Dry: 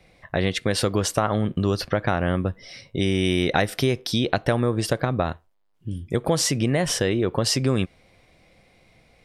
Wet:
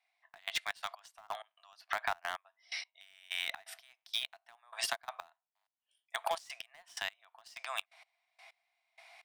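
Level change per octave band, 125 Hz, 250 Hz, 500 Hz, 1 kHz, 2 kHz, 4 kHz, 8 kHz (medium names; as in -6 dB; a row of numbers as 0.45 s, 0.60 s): under -40 dB, under -40 dB, -24.5 dB, -12.0 dB, -10.0 dB, -11.0 dB, -17.5 dB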